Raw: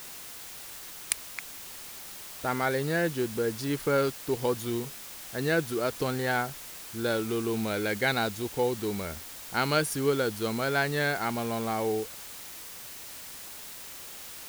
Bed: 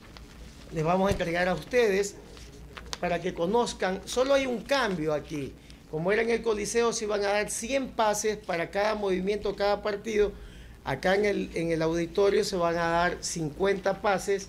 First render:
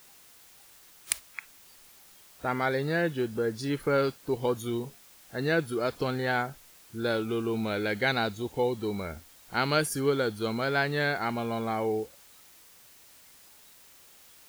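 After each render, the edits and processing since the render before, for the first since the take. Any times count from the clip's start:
noise reduction from a noise print 12 dB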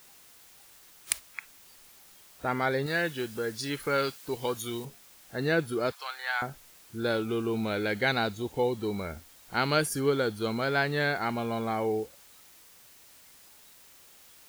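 0:02.86–0:04.85: tilt shelving filter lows −5.5 dB, about 1,100 Hz
0:05.92–0:06.42: high-pass filter 910 Hz 24 dB per octave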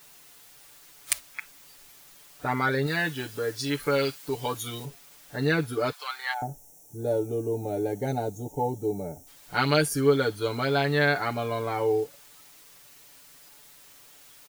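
0:06.33–0:09.27: gain on a spectral selection 920–5,400 Hz −21 dB
comb filter 6.9 ms, depth 91%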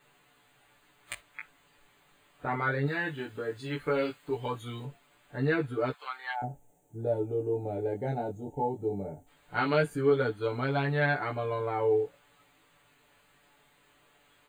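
moving average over 8 samples
chorus effect 0.18 Hz, delay 15 ms, depth 6.2 ms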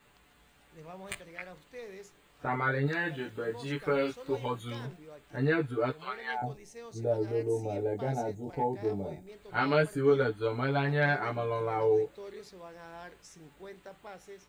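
mix in bed −21.5 dB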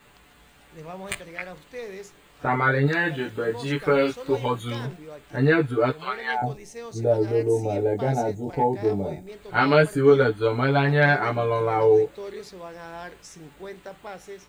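level +8.5 dB

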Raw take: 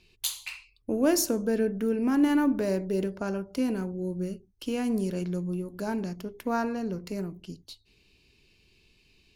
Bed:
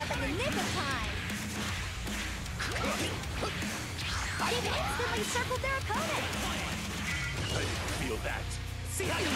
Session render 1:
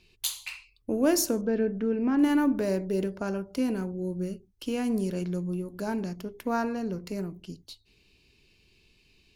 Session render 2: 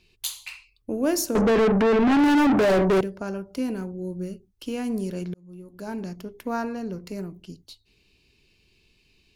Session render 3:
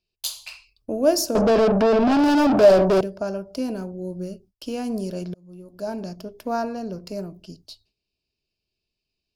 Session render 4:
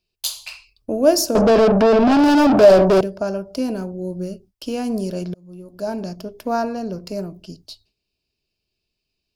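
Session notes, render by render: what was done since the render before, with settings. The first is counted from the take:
0:01.41–0:02.19: high-frequency loss of the air 190 metres
0:01.35–0:03.01: mid-hump overdrive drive 36 dB, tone 2,000 Hz, clips at −12 dBFS; 0:05.34–0:06.08: fade in
thirty-one-band graphic EQ 630 Hz +12 dB, 2,000 Hz −8 dB, 5,000 Hz +9 dB; noise gate with hold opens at −48 dBFS
level +4 dB; brickwall limiter −2 dBFS, peak gain reduction 1.5 dB

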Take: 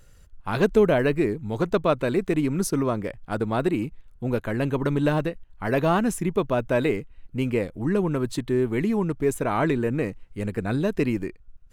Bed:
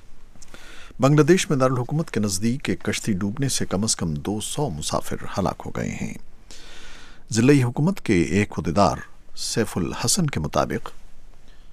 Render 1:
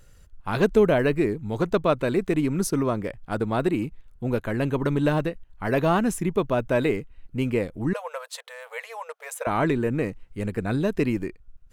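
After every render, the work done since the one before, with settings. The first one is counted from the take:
0:07.93–0:09.47: linear-phase brick-wall high-pass 460 Hz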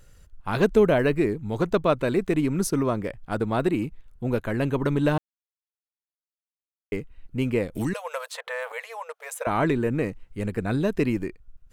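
0:05.18–0:06.92: silence
0:07.75–0:08.72: multiband upward and downward compressor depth 100%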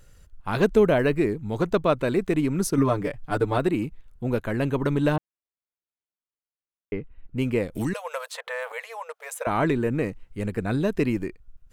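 0:02.77–0:03.58: comb filter 6.8 ms, depth 92%
0:05.16–0:07.37: high-frequency loss of the air 350 metres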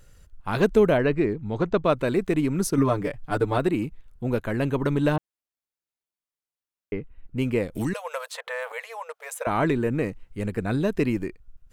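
0:00.97–0:01.85: high-frequency loss of the air 110 metres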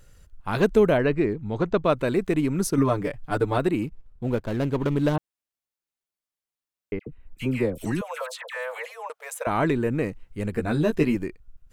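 0:03.86–0:05.15: running median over 25 samples
0:06.99–0:09.10: all-pass dispersion lows, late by 79 ms, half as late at 1,300 Hz
0:10.52–0:11.15: double-tracking delay 13 ms −4 dB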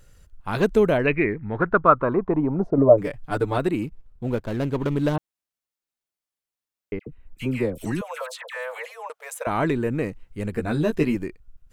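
0:01.06–0:02.97: low-pass with resonance 2,500 Hz → 560 Hz, resonance Q 5.8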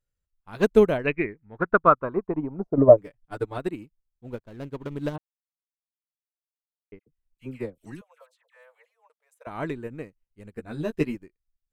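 boost into a limiter +6 dB
expander for the loud parts 2.5 to 1, over −31 dBFS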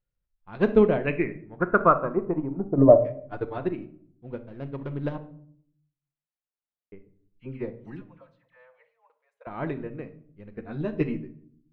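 high-frequency loss of the air 290 metres
rectangular room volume 870 cubic metres, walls furnished, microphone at 0.9 metres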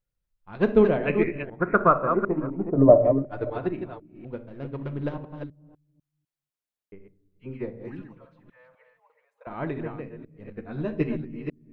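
delay that plays each chunk backwards 250 ms, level −7 dB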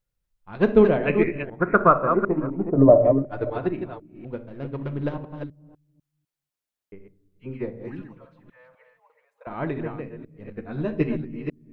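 level +2.5 dB
brickwall limiter −3 dBFS, peak gain reduction 3 dB

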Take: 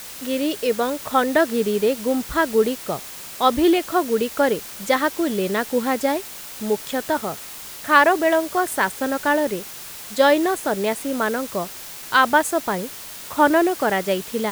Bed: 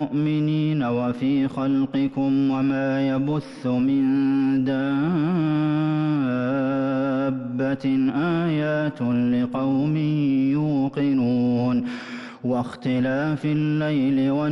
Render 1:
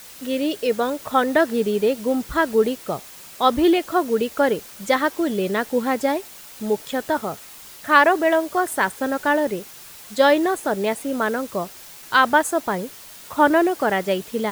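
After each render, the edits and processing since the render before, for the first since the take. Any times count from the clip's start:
broadband denoise 6 dB, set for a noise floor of −37 dBFS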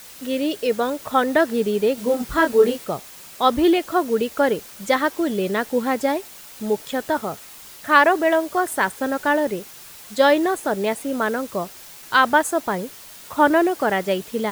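0:01.95–0:02.85: double-tracking delay 25 ms −3 dB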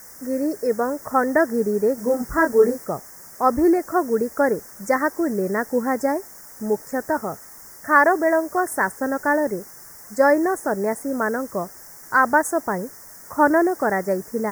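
Chebyshev band-stop filter 1,900–5,400 Hz, order 3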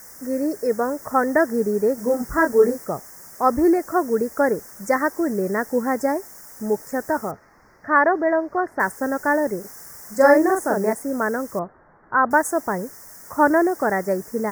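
0:07.31–0:08.80: high-frequency loss of the air 300 metres
0:09.60–0:10.93: double-tracking delay 42 ms −2.5 dB
0:11.59–0:12.31: low-pass filter 1,500 Hz 24 dB per octave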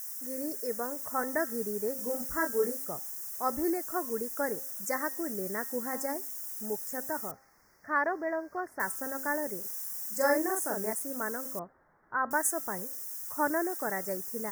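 first-order pre-emphasis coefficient 0.8
hum removal 266.2 Hz, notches 7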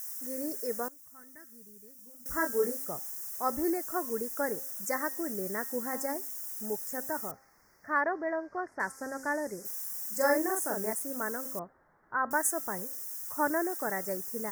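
0:00.88–0:02.26: guitar amp tone stack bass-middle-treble 6-0-2
0:08.00–0:09.64: low-pass filter 3,700 Hz → 8,700 Hz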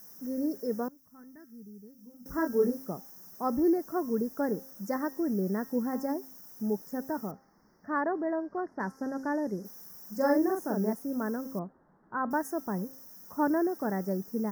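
drawn EQ curve 120 Hz 0 dB, 190 Hz +12 dB, 560 Hz 0 dB, 920 Hz 0 dB, 1,800 Hz −7 dB, 2,500 Hz −16 dB, 5,600 Hz −4 dB, 8,000 Hz −22 dB, 13,000 Hz −10 dB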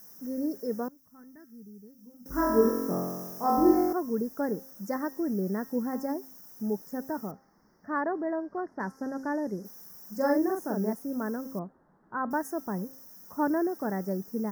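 0:02.28–0:03.93: flutter between parallel walls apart 3.8 metres, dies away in 1.3 s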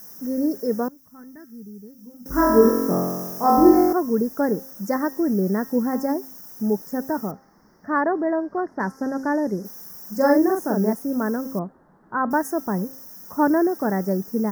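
level +8.5 dB
brickwall limiter −3 dBFS, peak gain reduction 1.5 dB

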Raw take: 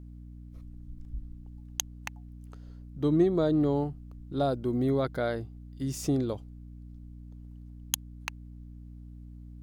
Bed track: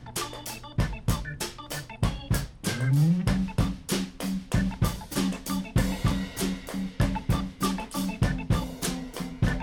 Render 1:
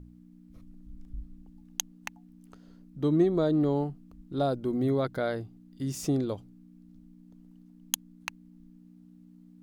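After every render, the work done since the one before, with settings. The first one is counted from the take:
hum removal 60 Hz, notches 2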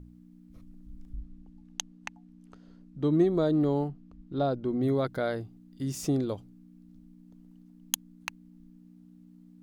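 0:01.16–0:03.13: high-frequency loss of the air 53 metres
0:03.88–0:04.83: high-frequency loss of the air 98 metres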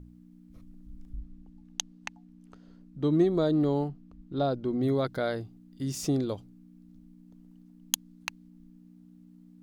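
dynamic equaliser 4,500 Hz, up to +4 dB, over −57 dBFS, Q 1.2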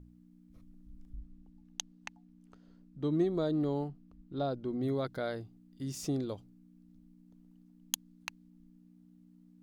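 level −6 dB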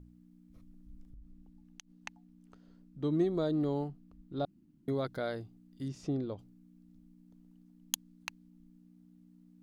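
0:01.02–0:01.94: downward compressor, threshold −48 dBFS
0:04.45–0:04.88: fill with room tone
0:05.88–0:06.39: head-to-tape spacing loss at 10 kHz 21 dB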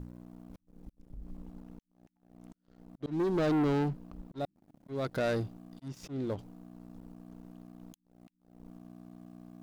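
volume swells 419 ms
leveller curve on the samples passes 3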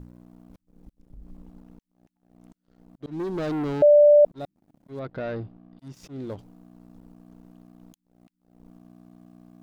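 0:03.82–0:04.25: beep over 589 Hz −10.5 dBFS
0:04.99–0:05.79: high-frequency loss of the air 300 metres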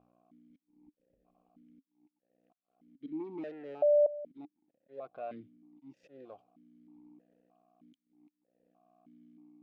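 amplitude tremolo 0.98 Hz, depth 29%
formant filter that steps through the vowels 3.2 Hz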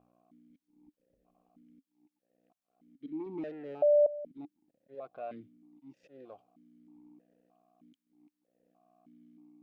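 0:03.26–0:04.95: low-shelf EQ 230 Hz +7.5 dB

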